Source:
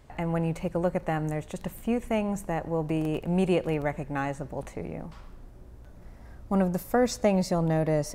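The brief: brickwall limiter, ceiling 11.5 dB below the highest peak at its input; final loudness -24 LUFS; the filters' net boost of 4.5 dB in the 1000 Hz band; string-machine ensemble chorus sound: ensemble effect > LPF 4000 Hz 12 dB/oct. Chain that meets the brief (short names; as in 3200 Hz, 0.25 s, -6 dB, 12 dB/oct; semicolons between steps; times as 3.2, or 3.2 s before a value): bell 1000 Hz +6.5 dB; limiter -19.5 dBFS; ensemble effect; LPF 4000 Hz 12 dB/oct; gain +10 dB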